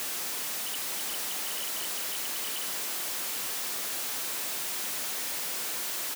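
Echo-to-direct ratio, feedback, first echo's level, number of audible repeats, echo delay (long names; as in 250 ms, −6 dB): −10.5 dB, repeats not evenly spaced, −10.5 dB, 1, 883 ms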